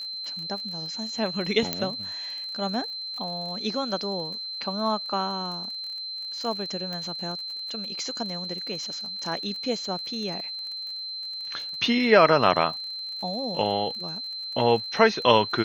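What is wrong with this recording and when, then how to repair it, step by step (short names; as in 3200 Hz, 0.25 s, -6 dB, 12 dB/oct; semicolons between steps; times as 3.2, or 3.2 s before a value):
crackle 37/s -35 dBFS
tone 4100 Hz -32 dBFS
1.73 pop -8 dBFS
6.93 pop -21 dBFS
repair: de-click; notch 4100 Hz, Q 30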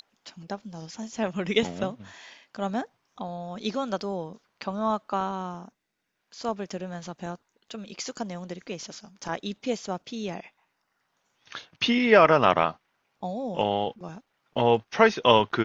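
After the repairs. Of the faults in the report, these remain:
none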